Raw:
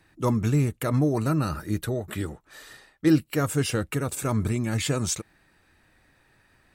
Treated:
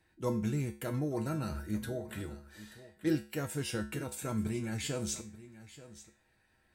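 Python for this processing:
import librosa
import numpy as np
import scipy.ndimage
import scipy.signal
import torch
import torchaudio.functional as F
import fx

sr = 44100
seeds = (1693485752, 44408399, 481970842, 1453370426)

y = fx.notch(x, sr, hz=1200.0, q=6.9)
y = fx.comb_fb(y, sr, f0_hz=71.0, decay_s=0.36, harmonics='odd', damping=0.0, mix_pct=80)
y = y + 10.0 ** (-16.5 / 20.0) * np.pad(y, (int(883 * sr / 1000.0), 0))[:len(y)]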